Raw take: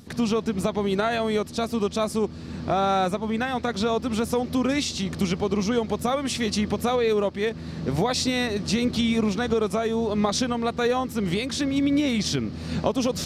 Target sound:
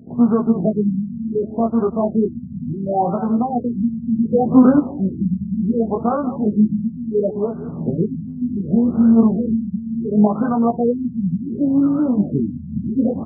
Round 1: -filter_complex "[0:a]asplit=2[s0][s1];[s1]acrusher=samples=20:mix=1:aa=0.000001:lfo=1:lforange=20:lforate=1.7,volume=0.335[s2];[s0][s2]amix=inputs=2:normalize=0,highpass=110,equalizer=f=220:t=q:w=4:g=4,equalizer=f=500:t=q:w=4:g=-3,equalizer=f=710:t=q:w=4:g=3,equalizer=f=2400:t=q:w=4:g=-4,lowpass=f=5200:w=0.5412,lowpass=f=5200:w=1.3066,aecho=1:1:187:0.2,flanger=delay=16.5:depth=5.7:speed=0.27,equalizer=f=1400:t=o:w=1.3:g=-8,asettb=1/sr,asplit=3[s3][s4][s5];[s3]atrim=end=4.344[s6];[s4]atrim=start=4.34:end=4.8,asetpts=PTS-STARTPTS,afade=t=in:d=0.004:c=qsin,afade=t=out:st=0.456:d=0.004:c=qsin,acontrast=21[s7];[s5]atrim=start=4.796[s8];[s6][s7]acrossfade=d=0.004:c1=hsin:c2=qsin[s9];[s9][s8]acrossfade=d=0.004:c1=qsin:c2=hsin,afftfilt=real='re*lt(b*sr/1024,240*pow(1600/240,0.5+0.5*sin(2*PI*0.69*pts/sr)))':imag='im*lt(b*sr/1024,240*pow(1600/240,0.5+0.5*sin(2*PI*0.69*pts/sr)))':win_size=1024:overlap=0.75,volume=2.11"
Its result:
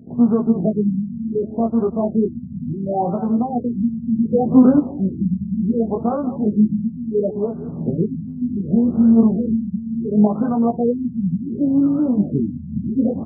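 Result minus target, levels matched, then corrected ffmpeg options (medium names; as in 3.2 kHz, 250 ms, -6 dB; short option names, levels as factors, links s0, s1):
1 kHz band -3.0 dB
-filter_complex "[0:a]asplit=2[s0][s1];[s1]acrusher=samples=20:mix=1:aa=0.000001:lfo=1:lforange=20:lforate=1.7,volume=0.335[s2];[s0][s2]amix=inputs=2:normalize=0,highpass=110,equalizer=f=220:t=q:w=4:g=4,equalizer=f=500:t=q:w=4:g=-3,equalizer=f=710:t=q:w=4:g=3,equalizer=f=2400:t=q:w=4:g=-4,lowpass=f=5200:w=0.5412,lowpass=f=5200:w=1.3066,aecho=1:1:187:0.2,flanger=delay=16.5:depth=5.7:speed=0.27,asettb=1/sr,asplit=3[s3][s4][s5];[s3]atrim=end=4.344[s6];[s4]atrim=start=4.34:end=4.8,asetpts=PTS-STARTPTS,afade=t=in:d=0.004:c=qsin,afade=t=out:st=0.456:d=0.004:c=qsin,acontrast=21[s7];[s5]atrim=start=4.796[s8];[s6][s7]acrossfade=d=0.004:c1=hsin:c2=qsin[s9];[s9][s8]acrossfade=d=0.004:c1=qsin:c2=hsin,afftfilt=real='re*lt(b*sr/1024,240*pow(1600/240,0.5+0.5*sin(2*PI*0.69*pts/sr)))':imag='im*lt(b*sr/1024,240*pow(1600/240,0.5+0.5*sin(2*PI*0.69*pts/sr)))':win_size=1024:overlap=0.75,volume=2.11"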